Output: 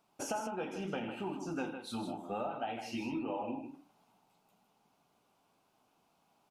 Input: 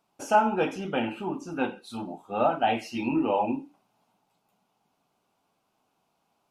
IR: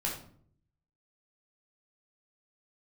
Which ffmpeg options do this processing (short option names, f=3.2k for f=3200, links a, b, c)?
-af "acompressor=threshold=-35dB:ratio=12,aecho=1:1:87|156:0.2|0.398"